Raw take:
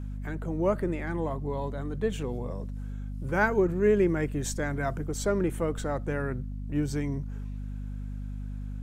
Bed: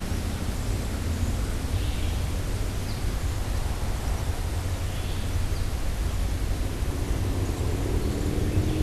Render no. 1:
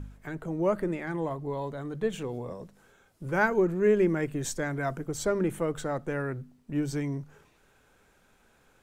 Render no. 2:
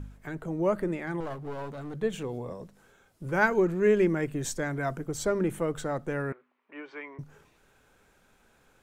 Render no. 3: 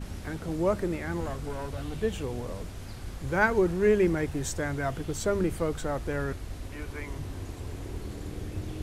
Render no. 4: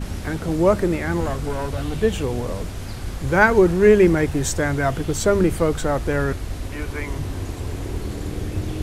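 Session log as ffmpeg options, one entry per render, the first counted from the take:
-af "bandreject=f=50:t=h:w=4,bandreject=f=100:t=h:w=4,bandreject=f=150:t=h:w=4,bandreject=f=200:t=h:w=4,bandreject=f=250:t=h:w=4"
-filter_complex "[0:a]asettb=1/sr,asplit=3[s0][s1][s2];[s0]atrim=end=1.204[s3];[s1]atrim=start=1.2:end=1.94,asetpts=PTS-STARTPTS,afade=t=in:d=0.004:c=qsin,afade=t=out:st=0.736:d=0.004:c=qsin,aeval=exprs='clip(val(0),-1,0.0119)':c=same[s4];[s2]atrim=start=1.936[s5];[s3][s4]acrossfade=d=0.004:c1=hsin:c2=qsin[s6];[s6][s5]acrossfade=d=0.004:c1=qsin:c2=hsin,asettb=1/sr,asplit=3[s7][s8][s9];[s7]atrim=end=3.424[s10];[s8]atrim=start=3.42:end=4.08,asetpts=PTS-STARTPTS,afade=t=in:d=0.004:c=qsin,afade=t=out:st=0.656:d=0.004:c=qsin,equalizer=f=3600:w=0.46:g=4[s11];[s9]atrim=start=4.076[s12];[s10][s11]acrossfade=d=0.004:c1=hsin:c2=qsin[s13];[s13][s12]acrossfade=d=0.004:c1=qsin:c2=hsin,asettb=1/sr,asplit=3[s14][s15][s16];[s14]atrim=end=6.324[s17];[s15]atrim=start=6.32:end=7.19,asetpts=PTS-STARTPTS,afade=t=in:d=0.004:c=qsin,afade=t=out:st=0.866:d=0.004:c=qsin,highpass=f=460:w=0.5412,highpass=f=460:w=1.3066,equalizer=f=490:t=q:w=4:g=-5,equalizer=f=690:t=q:w=4:g=-6,equalizer=f=1100:t=q:w=4:g=7,equalizer=f=2200:t=q:w=4:g=5,lowpass=f=2900:w=0.5412,lowpass=f=2900:w=1.3066[s18];[s16]atrim=start=7.186[s19];[s17][s18]acrossfade=d=0.004:c1=hsin:c2=qsin[s20];[s20][s19]acrossfade=d=0.004:c1=qsin:c2=hsin"
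-filter_complex "[1:a]volume=0.282[s0];[0:a][s0]amix=inputs=2:normalize=0"
-af "volume=2.99,alimiter=limit=0.891:level=0:latency=1"

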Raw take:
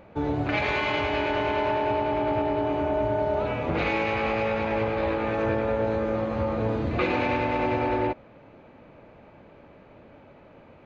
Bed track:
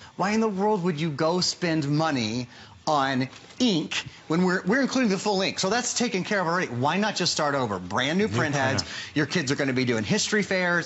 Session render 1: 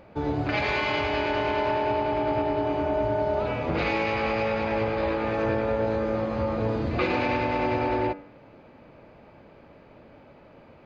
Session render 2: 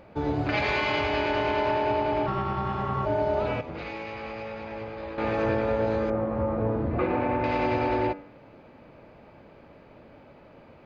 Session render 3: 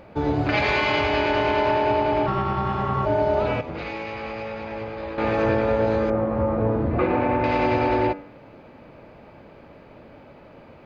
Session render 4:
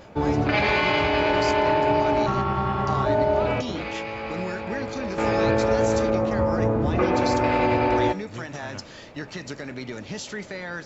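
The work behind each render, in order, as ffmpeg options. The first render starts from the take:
-af "equalizer=f=4800:t=o:w=0.21:g=9,bandreject=f=96.5:t=h:w=4,bandreject=f=193:t=h:w=4,bandreject=f=289.5:t=h:w=4,bandreject=f=386:t=h:w=4,bandreject=f=482.5:t=h:w=4,bandreject=f=579:t=h:w=4,bandreject=f=675.5:t=h:w=4,bandreject=f=772:t=h:w=4,bandreject=f=868.5:t=h:w=4,bandreject=f=965:t=h:w=4,bandreject=f=1061.5:t=h:w=4,bandreject=f=1158:t=h:w=4,bandreject=f=1254.5:t=h:w=4,bandreject=f=1351:t=h:w=4,bandreject=f=1447.5:t=h:w=4,bandreject=f=1544:t=h:w=4,bandreject=f=1640.5:t=h:w=4,bandreject=f=1737:t=h:w=4,bandreject=f=1833.5:t=h:w=4,bandreject=f=1930:t=h:w=4,bandreject=f=2026.5:t=h:w=4,bandreject=f=2123:t=h:w=4,bandreject=f=2219.5:t=h:w=4,bandreject=f=2316:t=h:w=4,bandreject=f=2412.5:t=h:w=4,bandreject=f=2509:t=h:w=4,bandreject=f=2605.5:t=h:w=4,bandreject=f=2702:t=h:w=4,bandreject=f=2798.5:t=h:w=4"
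-filter_complex "[0:a]asplit=3[s0][s1][s2];[s0]afade=t=out:st=2.26:d=0.02[s3];[s1]aeval=exprs='val(0)*sin(2*PI*490*n/s)':c=same,afade=t=in:st=2.26:d=0.02,afade=t=out:st=3.05:d=0.02[s4];[s2]afade=t=in:st=3.05:d=0.02[s5];[s3][s4][s5]amix=inputs=3:normalize=0,asettb=1/sr,asplit=3[s6][s7][s8];[s6]atrim=end=6.104[s9];[s7]atrim=start=6.1:end=7.44,asetpts=PTS-STARTPTS,afade=t=in:d=0.004:c=qsin,afade=t=out:st=1.336:d=0.004:c=qsin,lowpass=1400[s10];[s8]atrim=start=7.436[s11];[s9][s10]acrossfade=d=0.004:c1=hsin:c2=qsin[s12];[s12][s11]acrossfade=d=0.004:c1=qsin:c2=hsin,asplit=3[s13][s14][s15];[s13]atrim=end=3.612[s16];[s14]atrim=start=3.608:end=5.182,asetpts=PTS-STARTPTS,volume=0.299[s17];[s15]atrim=start=5.178[s18];[s16][s17]acrossfade=d=0.004:c1=hsin:c2=hsin[s19];[s19][s18]acrossfade=d=0.004:c1=hsin:c2=hsin"
-af "volume=1.68"
-filter_complex "[1:a]volume=0.299[s0];[0:a][s0]amix=inputs=2:normalize=0"

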